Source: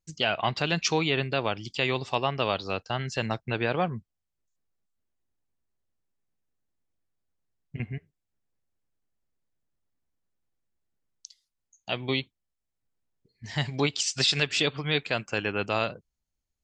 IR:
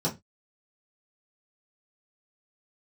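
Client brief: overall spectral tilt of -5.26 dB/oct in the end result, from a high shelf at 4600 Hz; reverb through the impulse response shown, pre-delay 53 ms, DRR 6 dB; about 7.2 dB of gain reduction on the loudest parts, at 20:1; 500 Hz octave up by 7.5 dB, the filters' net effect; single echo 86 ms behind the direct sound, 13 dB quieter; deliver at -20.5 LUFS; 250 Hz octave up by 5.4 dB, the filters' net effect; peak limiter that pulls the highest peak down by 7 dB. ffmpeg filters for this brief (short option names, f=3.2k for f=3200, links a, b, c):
-filter_complex "[0:a]equalizer=f=250:t=o:g=4.5,equalizer=f=500:t=o:g=8,highshelf=f=4.6k:g=-6.5,acompressor=threshold=-22dB:ratio=20,alimiter=limit=-17dB:level=0:latency=1,aecho=1:1:86:0.224,asplit=2[a][b];[1:a]atrim=start_sample=2205,adelay=53[c];[b][c]afir=irnorm=-1:irlink=0,volume=-14.5dB[d];[a][d]amix=inputs=2:normalize=0,volume=7dB"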